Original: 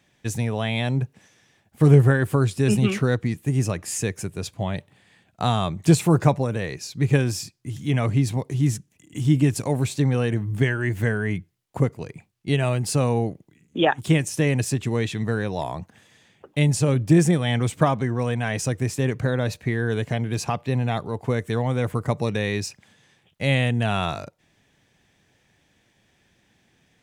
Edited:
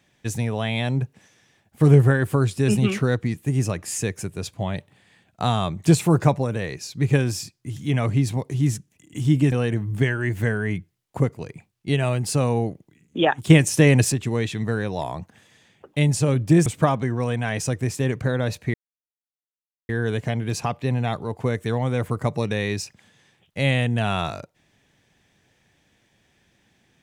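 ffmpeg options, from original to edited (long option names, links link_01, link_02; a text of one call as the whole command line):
ffmpeg -i in.wav -filter_complex "[0:a]asplit=6[link_01][link_02][link_03][link_04][link_05][link_06];[link_01]atrim=end=9.522[link_07];[link_02]atrim=start=10.118:end=14.102[link_08];[link_03]atrim=start=14.098:end=14.722,asetpts=PTS-STARTPTS,volume=6dB[link_09];[link_04]atrim=start=14.718:end=17.262[link_10];[link_05]atrim=start=17.648:end=19.73,asetpts=PTS-STARTPTS,afade=type=out:start_time=2.078:duration=0.004:curve=hsin,apad=pad_dur=1.15[link_11];[link_06]atrim=start=19.73,asetpts=PTS-STARTPTS,afade=type=in:duration=0.004:curve=hsin[link_12];[link_07][link_08]acrossfade=duration=0.004:curve1=hsin:curve2=hsin[link_13];[link_13][link_09]acrossfade=duration=0.004:curve1=hsin:curve2=hsin[link_14];[link_14][link_10]acrossfade=duration=0.004:curve1=hsin:curve2=hsin[link_15];[link_11][link_12]concat=n=2:v=0:a=1[link_16];[link_15][link_16]acrossfade=duration=0.004:curve1=hsin:curve2=hsin" out.wav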